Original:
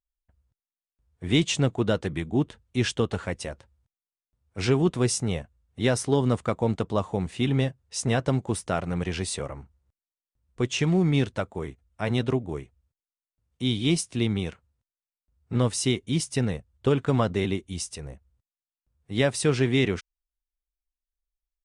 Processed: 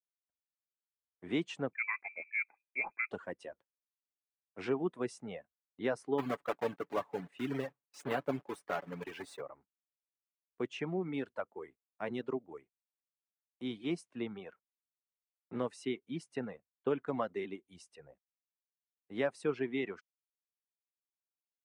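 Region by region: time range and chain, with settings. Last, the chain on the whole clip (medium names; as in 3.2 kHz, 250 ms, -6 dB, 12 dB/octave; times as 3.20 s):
1.73–3.11 s: band-stop 610 Hz, Q 5.3 + frequency inversion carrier 2.5 kHz
6.18–9.42 s: block-companded coder 3-bit + comb 7 ms, depth 46%
whole clip: reverb removal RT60 1.8 s; gate -48 dBFS, range -18 dB; three-band isolator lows -23 dB, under 210 Hz, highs -18 dB, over 2.5 kHz; trim -8 dB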